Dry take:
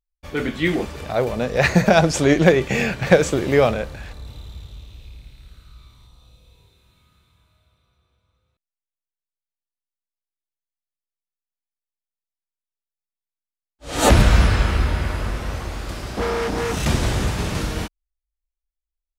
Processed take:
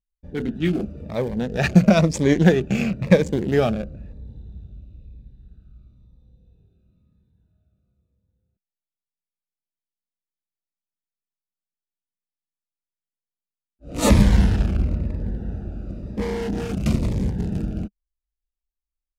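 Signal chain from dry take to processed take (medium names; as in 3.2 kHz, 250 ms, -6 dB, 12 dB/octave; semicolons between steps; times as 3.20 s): local Wiener filter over 41 samples; peaking EQ 200 Hz +8 dB 0.55 oct; Shepard-style phaser falling 1 Hz; trim -2 dB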